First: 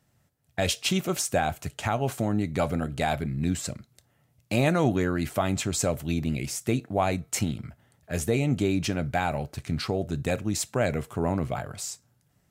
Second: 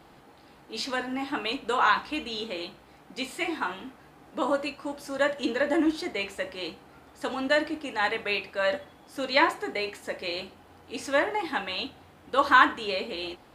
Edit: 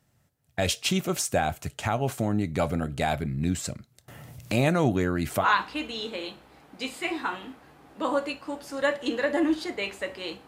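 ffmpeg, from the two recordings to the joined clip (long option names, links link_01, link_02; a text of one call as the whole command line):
ffmpeg -i cue0.wav -i cue1.wav -filter_complex "[0:a]asettb=1/sr,asplit=3[link_01][link_02][link_03];[link_01]atrim=end=4.084[link_04];[link_02]atrim=start=4.08:end=5.46,asetpts=PTS-STARTPTS,afade=type=in:duration=0.004:curve=qsin,afade=type=out:start_time=1.376:duration=0.004:curve=qsin,acompressor=mode=upward:threshold=-26dB:ratio=2.5:attack=3.2:release=140:knee=2.83:detection=peak[link_05];[link_03]atrim=start=5.456[link_06];[link_04][link_05]acrossfade=duration=0.004:curve1=hsin:curve2=qsin[link_07];[link_07][link_06]acrossfade=duration=0.004:curve1=qsin:curve2=hsin,apad=whole_dur=10.47,atrim=end=10.47,atrim=end=5.46,asetpts=PTS-STARTPTS[link_08];[1:a]atrim=start=1.77:end=6.84,asetpts=PTS-STARTPTS[link_09];[link_08][link_09]acrossfade=duration=0.06:curve1=tri:curve2=tri" out.wav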